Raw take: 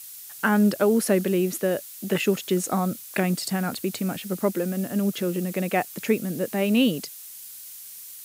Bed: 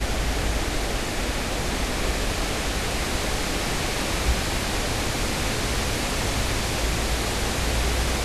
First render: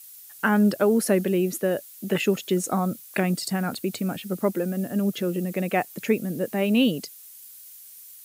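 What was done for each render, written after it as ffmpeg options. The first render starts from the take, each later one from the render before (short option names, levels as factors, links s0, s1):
-af "afftdn=nr=7:nf=-42"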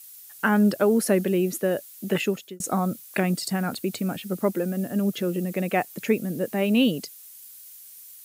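-filter_complex "[0:a]asplit=2[s0][s1];[s0]atrim=end=2.6,asetpts=PTS-STARTPTS,afade=t=out:st=2.17:d=0.43[s2];[s1]atrim=start=2.6,asetpts=PTS-STARTPTS,afade=t=in:d=0.004:c=hsin[s3];[s2][s3]concat=n=2:v=0:a=1"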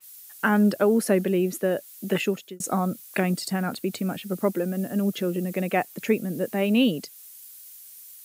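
-af "highpass=110,adynamicequalizer=threshold=0.00891:dfrequency=3600:dqfactor=0.7:tfrequency=3600:tqfactor=0.7:attack=5:release=100:ratio=0.375:range=2:mode=cutabove:tftype=highshelf"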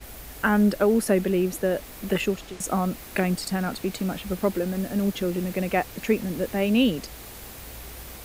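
-filter_complex "[1:a]volume=0.126[s0];[0:a][s0]amix=inputs=2:normalize=0"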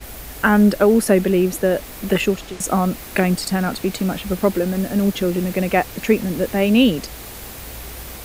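-af "volume=2.11"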